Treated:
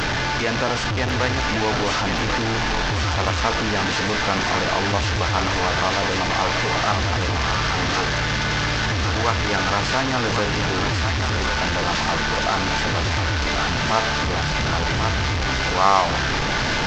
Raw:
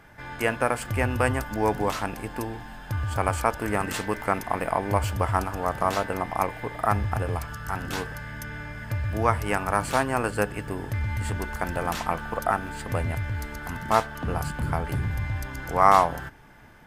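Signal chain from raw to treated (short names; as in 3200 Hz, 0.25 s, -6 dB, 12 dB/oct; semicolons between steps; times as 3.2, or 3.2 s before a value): delta modulation 32 kbps, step -16.5 dBFS; thinning echo 1.093 s, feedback 69%, high-pass 780 Hz, level -3.5 dB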